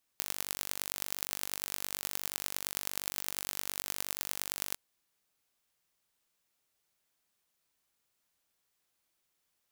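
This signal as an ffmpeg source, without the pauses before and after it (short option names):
-f lavfi -i "aevalsrc='0.562*eq(mod(n,907),0)*(0.5+0.5*eq(mod(n,4535),0))':d=4.55:s=44100"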